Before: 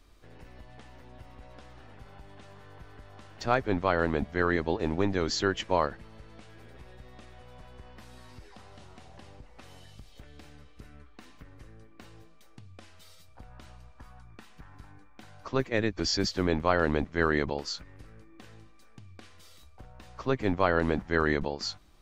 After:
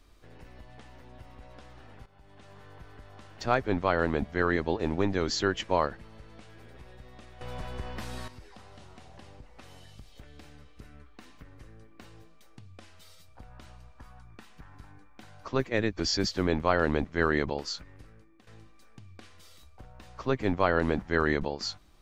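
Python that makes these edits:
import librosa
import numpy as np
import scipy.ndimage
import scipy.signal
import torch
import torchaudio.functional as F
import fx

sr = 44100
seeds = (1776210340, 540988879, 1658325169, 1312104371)

y = fx.edit(x, sr, fx.fade_in_from(start_s=2.06, length_s=0.53, floor_db=-14.0),
    fx.clip_gain(start_s=7.41, length_s=0.87, db=11.5),
    fx.fade_out_to(start_s=17.71, length_s=0.76, curve='qsin', floor_db=-13.5), tone=tone)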